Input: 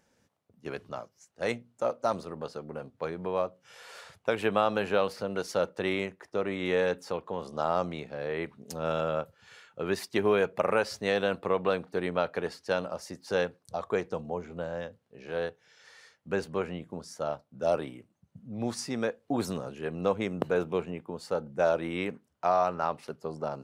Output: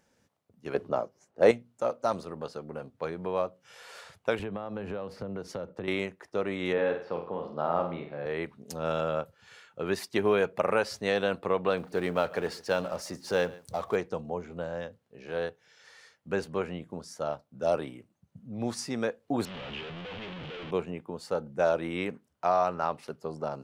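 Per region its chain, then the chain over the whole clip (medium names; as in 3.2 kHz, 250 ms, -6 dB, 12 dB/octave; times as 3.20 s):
0.74–1.51 s: peaking EQ 440 Hz +12 dB 2.8 oct + tape noise reduction on one side only decoder only
4.39–5.88 s: tilt EQ -3 dB/octave + compression 10:1, threshold -31 dBFS + three bands expanded up and down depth 40%
6.73–8.26 s: high-pass 110 Hz + distance through air 360 m + flutter echo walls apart 8.1 m, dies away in 0.47 s
11.77–13.96 s: companding laws mixed up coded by mu + delay 139 ms -21 dB
19.45–20.71 s: one-bit comparator + four-pole ladder low-pass 3.5 kHz, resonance 55%
whole clip: none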